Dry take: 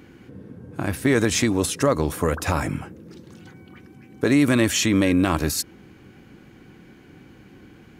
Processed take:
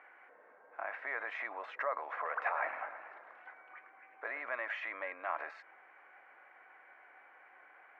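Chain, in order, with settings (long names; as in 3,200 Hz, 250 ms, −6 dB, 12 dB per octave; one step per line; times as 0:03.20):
brickwall limiter −19 dBFS, peak gain reduction 11.5 dB
elliptic band-pass filter 640–2,100 Hz, stop band 80 dB
0:02.14–0:04.43: feedback echo with a swinging delay time 109 ms, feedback 70%, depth 140 cents, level −11 dB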